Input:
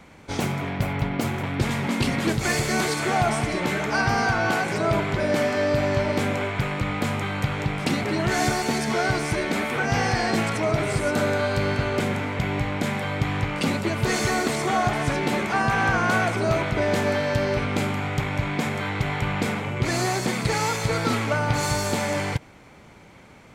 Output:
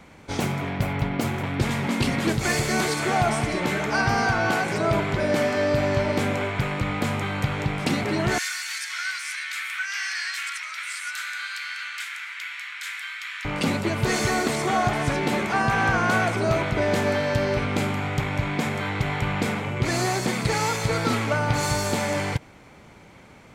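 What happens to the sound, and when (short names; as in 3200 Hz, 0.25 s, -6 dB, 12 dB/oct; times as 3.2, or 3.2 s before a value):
8.38–13.45 steep high-pass 1400 Hz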